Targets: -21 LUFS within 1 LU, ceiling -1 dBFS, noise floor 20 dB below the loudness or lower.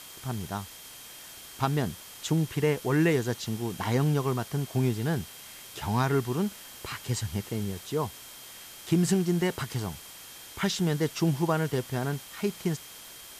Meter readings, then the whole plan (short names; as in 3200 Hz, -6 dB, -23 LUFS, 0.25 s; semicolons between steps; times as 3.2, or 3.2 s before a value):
steady tone 3200 Hz; tone level -53 dBFS; noise floor -46 dBFS; noise floor target -50 dBFS; loudness -29.5 LUFS; peak -13.0 dBFS; loudness target -21.0 LUFS
-> notch 3200 Hz, Q 30; denoiser 6 dB, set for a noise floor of -46 dBFS; gain +8.5 dB